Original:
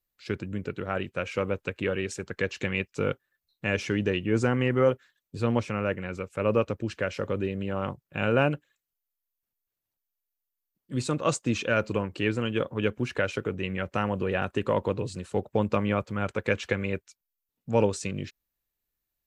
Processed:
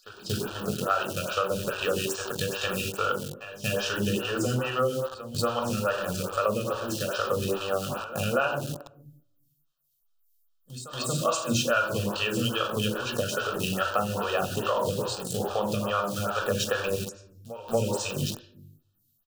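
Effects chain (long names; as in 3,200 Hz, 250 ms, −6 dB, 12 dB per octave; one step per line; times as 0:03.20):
low-shelf EQ 73 Hz +4.5 dB
on a send: single-tap delay 89 ms −15 dB
on the sum: convolution reverb RT60 0.75 s, pre-delay 14 ms, DRR 2 dB
in parallel at −4 dB: centre clipping without the shift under −28.5 dBFS
on the sum: Butterworth band-reject 2,100 Hz, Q 1.6
tilt shelving filter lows −9 dB, about 940 Hz
downward compressor 4 to 1, threshold −24 dBFS, peak gain reduction 11 dB
echo ahead of the sound 234 ms −15 dB
phaser with staggered stages 2.4 Hz
level +3 dB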